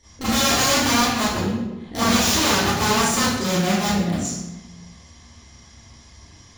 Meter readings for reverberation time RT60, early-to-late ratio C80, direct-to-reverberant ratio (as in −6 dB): 1.1 s, 1.5 dB, −13.5 dB